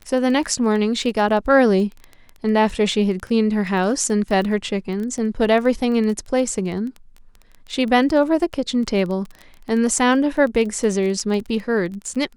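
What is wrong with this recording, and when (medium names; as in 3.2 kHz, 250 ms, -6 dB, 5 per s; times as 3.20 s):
crackle 17 per s -27 dBFS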